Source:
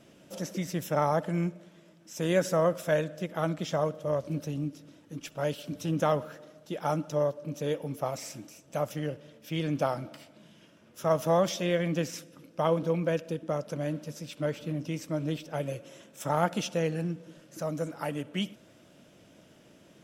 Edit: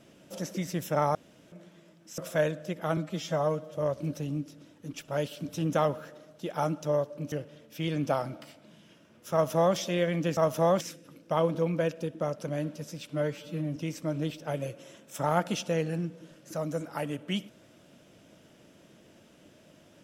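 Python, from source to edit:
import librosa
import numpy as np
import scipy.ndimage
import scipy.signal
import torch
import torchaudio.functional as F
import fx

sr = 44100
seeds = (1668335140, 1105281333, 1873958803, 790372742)

y = fx.edit(x, sr, fx.room_tone_fill(start_s=1.15, length_s=0.37),
    fx.cut(start_s=2.18, length_s=0.53),
    fx.stretch_span(start_s=3.5, length_s=0.52, factor=1.5),
    fx.cut(start_s=7.59, length_s=1.45),
    fx.duplicate(start_s=11.05, length_s=0.44, to_s=12.09),
    fx.stretch_span(start_s=14.38, length_s=0.44, factor=1.5), tone=tone)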